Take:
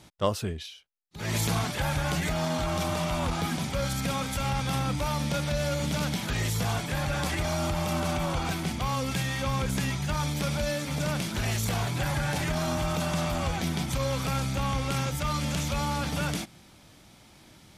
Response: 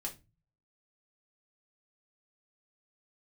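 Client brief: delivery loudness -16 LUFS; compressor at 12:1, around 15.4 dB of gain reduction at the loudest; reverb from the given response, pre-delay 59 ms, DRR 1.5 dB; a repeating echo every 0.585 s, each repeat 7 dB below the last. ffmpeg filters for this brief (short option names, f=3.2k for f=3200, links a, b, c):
-filter_complex "[0:a]acompressor=threshold=-39dB:ratio=12,aecho=1:1:585|1170|1755|2340|2925:0.447|0.201|0.0905|0.0407|0.0183,asplit=2[a][b];[1:a]atrim=start_sample=2205,adelay=59[c];[b][c]afir=irnorm=-1:irlink=0,volume=-0.5dB[d];[a][d]amix=inputs=2:normalize=0,volume=24dB"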